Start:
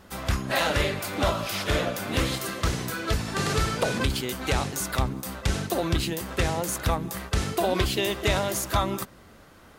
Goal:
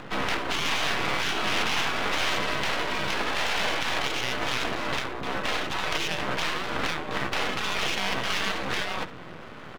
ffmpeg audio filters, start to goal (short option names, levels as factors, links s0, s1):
-filter_complex "[0:a]afftfilt=real='re*lt(hypot(re,im),0.0708)':imag='im*lt(hypot(re,im),0.0708)':win_size=1024:overlap=0.75,asplit=2[s0][s1];[s1]alimiter=level_in=1.12:limit=0.0631:level=0:latency=1,volume=0.891,volume=1.06[s2];[s0][s2]amix=inputs=2:normalize=0,highpass=f=160:t=q:w=0.5412,highpass=f=160:t=q:w=1.307,lowpass=f=3500:t=q:w=0.5176,lowpass=f=3500:t=q:w=0.7071,lowpass=f=3500:t=q:w=1.932,afreqshift=-59,acompressor=mode=upward:threshold=0.00501:ratio=2.5,asplit=2[s3][s4];[s4]aecho=0:1:70:0.15[s5];[s3][s5]amix=inputs=2:normalize=0,aeval=exprs='max(val(0),0)':c=same,volume=2.66"